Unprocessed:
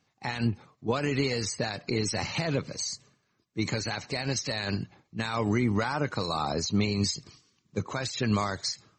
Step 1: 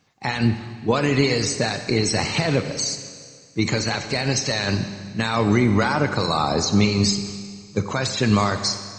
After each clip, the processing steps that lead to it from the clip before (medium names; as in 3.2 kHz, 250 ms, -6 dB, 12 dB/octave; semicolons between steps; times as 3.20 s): Schroeder reverb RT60 1.9 s, combs from 31 ms, DRR 8.5 dB; trim +8 dB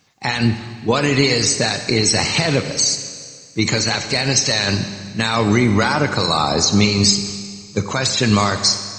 treble shelf 2.7 kHz +7 dB; trim +2.5 dB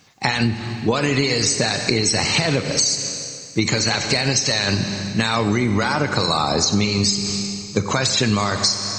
compression, threshold -21 dBFS, peak gain reduction 11.5 dB; trim +5.5 dB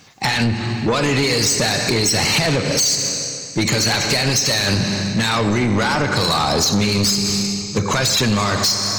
saturation -18.5 dBFS, distortion -9 dB; trim +6 dB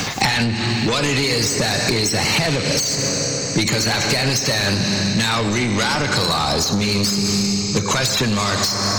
three bands compressed up and down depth 100%; trim -2 dB